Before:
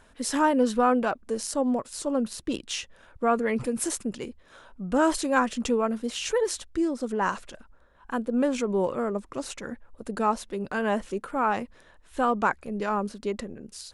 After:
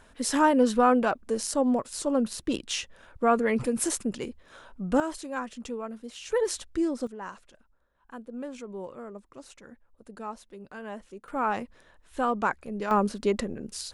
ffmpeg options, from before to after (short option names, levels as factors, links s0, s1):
-af "asetnsamples=n=441:p=0,asendcmd='5 volume volume -10.5dB;6.32 volume volume -1dB;7.07 volume volume -13dB;11.28 volume volume -2.5dB;12.91 volume volume 4.5dB',volume=1.12"